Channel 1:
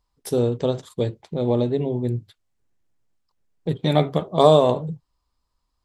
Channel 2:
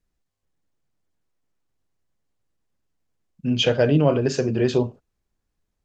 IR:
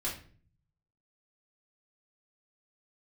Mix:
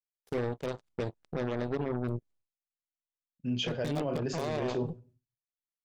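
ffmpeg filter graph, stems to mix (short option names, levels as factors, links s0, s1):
-filter_complex "[0:a]equalizer=f=8100:w=0.6:g=-8.5,acompressor=threshold=0.1:ratio=12,aeval=exprs='0.2*(cos(1*acos(clip(val(0)/0.2,-1,1)))-cos(1*PI/2))+0.00447*(cos(3*acos(clip(val(0)/0.2,-1,1)))-cos(3*PI/2))+0.0251*(cos(5*acos(clip(val(0)/0.2,-1,1)))-cos(5*PI/2))+0.0447*(cos(7*acos(clip(val(0)/0.2,-1,1)))-cos(7*PI/2))+0.00355*(cos(8*acos(clip(val(0)/0.2,-1,1)))-cos(8*PI/2))':c=same,volume=0.596[s0];[1:a]volume=0.282,asplit=2[s1][s2];[s2]volume=0.158[s3];[2:a]atrim=start_sample=2205[s4];[s3][s4]afir=irnorm=-1:irlink=0[s5];[s0][s1][s5]amix=inputs=3:normalize=0,agate=range=0.0224:threshold=0.00158:ratio=3:detection=peak,alimiter=limit=0.0668:level=0:latency=1:release=35"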